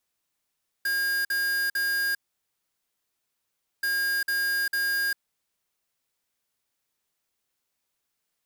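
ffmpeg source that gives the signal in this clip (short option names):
-f lavfi -i "aevalsrc='0.0501*(2*lt(mod(1620*t,1),0.5)-1)*clip(min(mod(mod(t,2.98),0.45),0.4-mod(mod(t,2.98),0.45))/0.005,0,1)*lt(mod(t,2.98),1.35)':d=5.96:s=44100"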